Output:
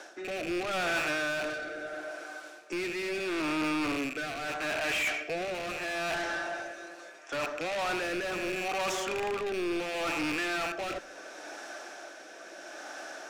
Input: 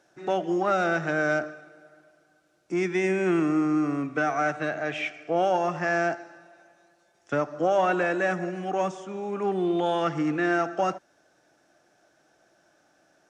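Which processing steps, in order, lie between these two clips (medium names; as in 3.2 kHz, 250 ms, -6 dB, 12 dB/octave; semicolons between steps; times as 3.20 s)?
rattle on loud lows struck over -43 dBFS, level -22 dBFS; high-pass 230 Hz 24 dB/octave; reverse; compression 16:1, threshold -37 dBFS, peak gain reduction 19 dB; reverse; overdrive pedal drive 28 dB, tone 7.3 kHz, clips at -25.5 dBFS; on a send at -17 dB: reverberation, pre-delay 3 ms; on the sum: rotary cabinet horn 0.75 Hz; feedback echo behind a band-pass 1180 ms, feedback 74%, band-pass 1.1 kHz, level -21.5 dB; trim +2.5 dB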